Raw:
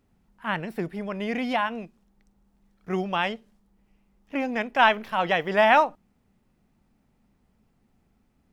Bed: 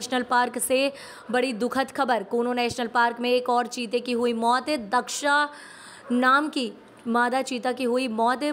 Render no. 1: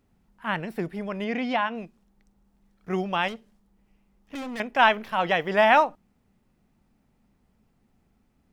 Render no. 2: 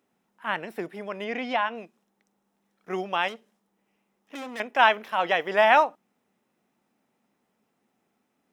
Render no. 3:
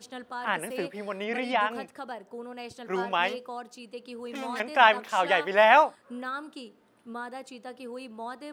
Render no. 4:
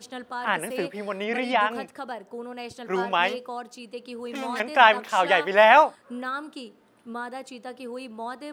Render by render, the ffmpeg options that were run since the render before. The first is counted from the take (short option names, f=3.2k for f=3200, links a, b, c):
-filter_complex "[0:a]asplit=3[a][b][c];[a]afade=t=out:st=1.24:d=0.02[d];[b]highpass=100,lowpass=5.5k,afade=t=in:st=1.24:d=0.02,afade=t=out:st=1.75:d=0.02[e];[c]afade=t=in:st=1.75:d=0.02[f];[d][e][f]amix=inputs=3:normalize=0,asettb=1/sr,asplit=3[g][h][i];[g]atrim=end=3.284[j];[h]atrim=start=3.28:end=4.6,asetpts=PTS-STARTPTS,afade=t=in:d=0.004:c=qsin,afade=t=out:st=1.316:d=0.004:c=qsin,asoftclip=type=hard:threshold=-32dB[k];[i]atrim=start=4.596[l];[j][k]acrossfade=d=0.004:c1=hsin:c2=qsin[m];[m][l]acrossfade=d=0.004:c1=qsin:c2=hsin"
-af "highpass=320,bandreject=f=4.5k:w=11"
-filter_complex "[1:a]volume=-15.5dB[a];[0:a][a]amix=inputs=2:normalize=0"
-af "volume=3.5dB,alimiter=limit=-3dB:level=0:latency=1"